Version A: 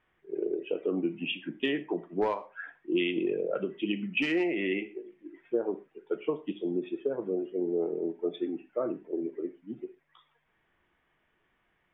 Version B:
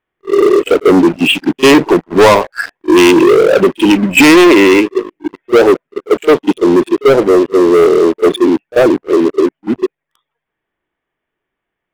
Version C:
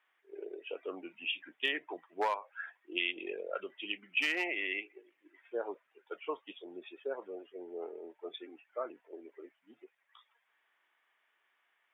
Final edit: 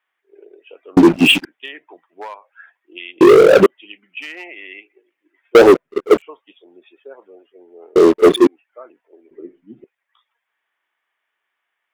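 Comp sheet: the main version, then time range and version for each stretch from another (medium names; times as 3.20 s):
C
0.97–1.45 s: from B
3.21–3.66 s: from B
5.55–6.22 s: from B
7.96–8.47 s: from B
9.31–9.84 s: from A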